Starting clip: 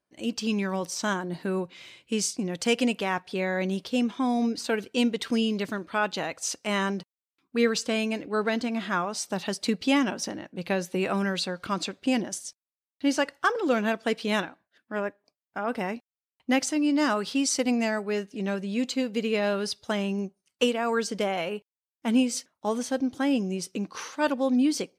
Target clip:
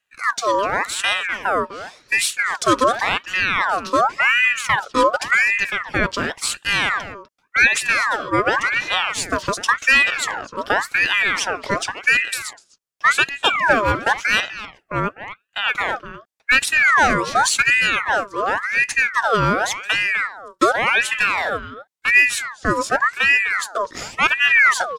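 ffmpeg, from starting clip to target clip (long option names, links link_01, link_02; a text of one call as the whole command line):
ffmpeg -i in.wav -filter_complex "[0:a]equalizer=frequency=6300:width_type=o:width=1.8:gain=6,bandreject=frequency=2900:width=5,acrossover=split=150|980|5900[link_01][link_02][link_03][link_04];[link_02]acontrast=84[link_05];[link_04]acrusher=bits=5:mode=log:mix=0:aa=0.000001[link_06];[link_01][link_05][link_03][link_06]amix=inputs=4:normalize=0,asplit=2[link_07][link_08];[link_08]adelay=250,highpass=300,lowpass=3400,asoftclip=type=hard:threshold=-15dB,volume=-11dB[link_09];[link_07][link_09]amix=inputs=2:normalize=0,aeval=exprs='val(0)*sin(2*PI*1500*n/s+1500*0.5/0.9*sin(2*PI*0.9*n/s))':channel_layout=same,volume=5dB" out.wav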